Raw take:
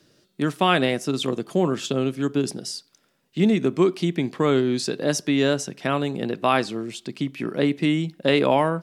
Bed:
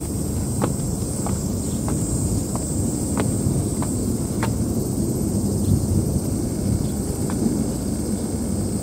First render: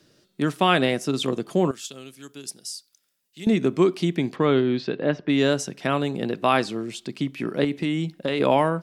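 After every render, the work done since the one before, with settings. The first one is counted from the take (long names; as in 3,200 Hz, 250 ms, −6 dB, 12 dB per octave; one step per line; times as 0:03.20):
0:01.71–0:03.47: first-order pre-emphasis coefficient 0.9
0:04.35–0:05.28: low-pass filter 5,300 Hz → 2,500 Hz 24 dB per octave
0:07.64–0:08.40: downward compressor, threshold −20 dBFS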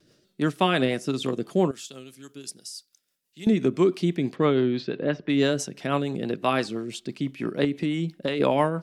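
pitch vibrato 0.77 Hz 20 cents
rotating-speaker cabinet horn 6 Hz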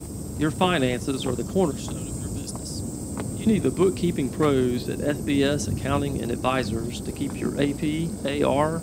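mix in bed −9 dB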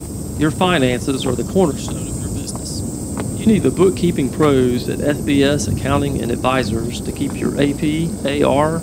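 level +7.5 dB
brickwall limiter −2 dBFS, peak gain reduction 2.5 dB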